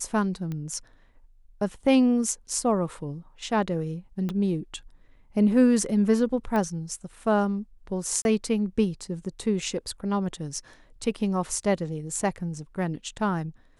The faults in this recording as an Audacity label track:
0.520000	0.520000	click −22 dBFS
4.290000	4.290000	click −19 dBFS
6.560000	6.560000	click −17 dBFS
8.220000	8.250000	drop-out 31 ms

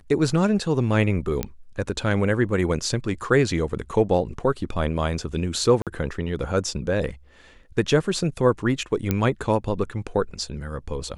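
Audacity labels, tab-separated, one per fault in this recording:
1.430000	1.430000	click −10 dBFS
5.820000	5.870000	drop-out 47 ms
9.110000	9.110000	click −8 dBFS

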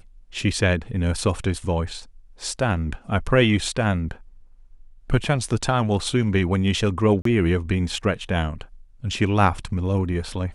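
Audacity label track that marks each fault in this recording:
7.220000	7.250000	drop-out 33 ms

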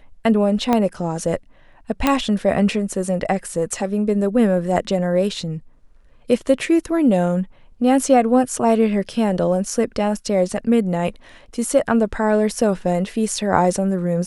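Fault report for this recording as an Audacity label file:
0.730000	0.730000	click −6 dBFS
2.070000	2.070000	click −3 dBFS

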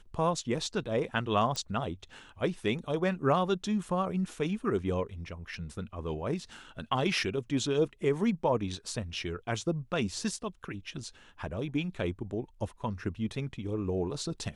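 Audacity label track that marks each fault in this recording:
1.560000	1.560000	click −20 dBFS

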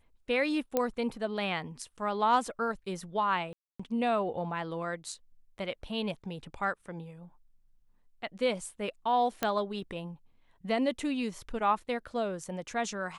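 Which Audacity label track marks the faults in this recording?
0.770000	0.770000	click −14 dBFS
3.530000	3.790000	drop-out 265 ms
9.430000	9.430000	click −13 dBFS

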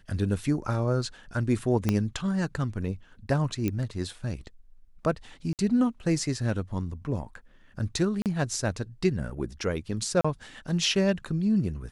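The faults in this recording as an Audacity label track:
1.890000	1.890000	click −11 dBFS
3.680000	3.680000	click −15 dBFS
5.530000	5.590000	drop-out 58 ms
8.220000	8.260000	drop-out 38 ms
10.210000	10.240000	drop-out 35 ms

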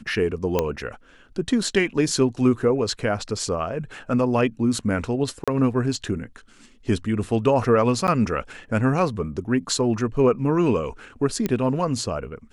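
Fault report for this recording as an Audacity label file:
0.590000	0.590000	click −7 dBFS
5.440000	5.480000	drop-out 36 ms
8.070000	8.080000	drop-out 9.7 ms
11.460000	11.460000	click −10 dBFS

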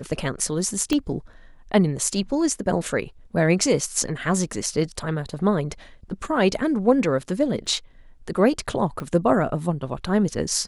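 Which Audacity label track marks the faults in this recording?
0.930000	0.930000	click −10 dBFS
7.660000	7.660000	drop-out 3.6 ms
9.000000	9.000000	click −19 dBFS

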